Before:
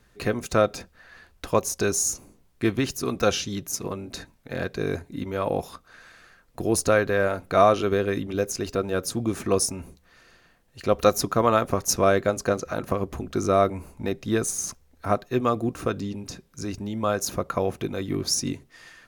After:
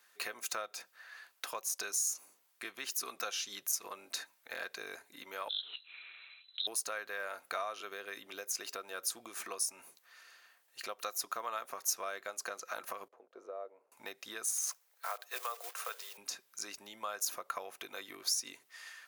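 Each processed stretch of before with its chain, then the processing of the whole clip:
5.49–6.67 s: compression 1.5:1, threshold -37 dBFS + frequency inversion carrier 4 kHz
13.08–13.92 s: companding laws mixed up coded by A + band-pass filter 500 Hz, Q 3.7
14.57–16.18 s: block-companded coder 5-bit + elliptic high-pass 440 Hz + compression 2.5:1, threshold -28 dBFS
whole clip: treble shelf 12 kHz +11 dB; compression 6:1, threshold -28 dBFS; high-pass 990 Hz 12 dB/octave; trim -2 dB

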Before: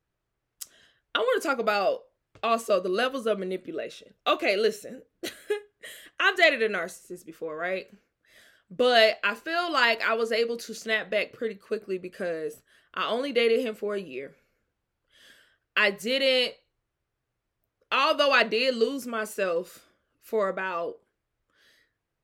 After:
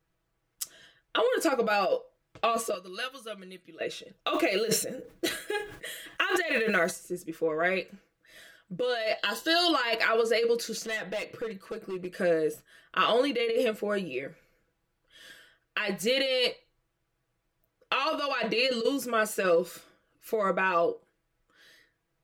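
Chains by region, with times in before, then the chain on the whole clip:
2.74–3.81 s: amplifier tone stack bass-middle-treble 5-5-5 + band-stop 7.6 kHz, Q 6.8
4.33–6.91 s: block-companded coder 7-bit + decay stretcher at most 110 dB/s
9.18–9.71 s: resonant high shelf 2.2 kHz +8 dB, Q 1.5 + compression 4:1, threshold -23 dBFS + Butterworth band-stop 2.4 kHz, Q 2.6
10.83–12.13 s: compression 2:1, threshold -37 dBFS + overload inside the chain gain 33.5 dB
whole clip: compressor with a negative ratio -27 dBFS, ratio -1; comb 6.1 ms, depth 56%

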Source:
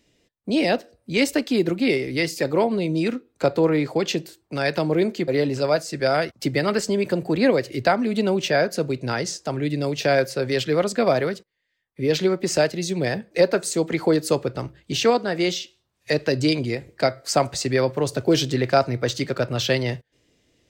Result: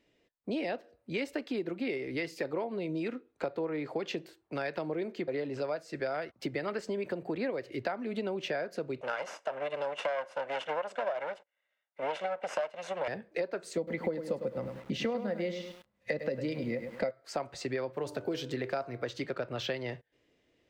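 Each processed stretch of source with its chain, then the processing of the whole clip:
9.01–13.08 s: comb filter that takes the minimum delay 1.4 ms + cabinet simulation 380–9600 Hz, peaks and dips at 580 Hz +8 dB, 1 kHz +5 dB, 1.6 kHz +5 dB, 2.8 kHz +6 dB, 4.5 kHz -7 dB
13.77–17.11 s: bass shelf 120 Hz +8 dB + small resonant body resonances 210/520/2000 Hz, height 16 dB, ringing for 80 ms + bit-crushed delay 102 ms, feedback 35%, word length 6-bit, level -10 dB
17.92–19.06 s: treble shelf 9 kHz +10 dB + de-hum 99.02 Hz, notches 16
whole clip: tone controls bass -8 dB, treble -14 dB; compression, threshold -27 dBFS; trim -4 dB

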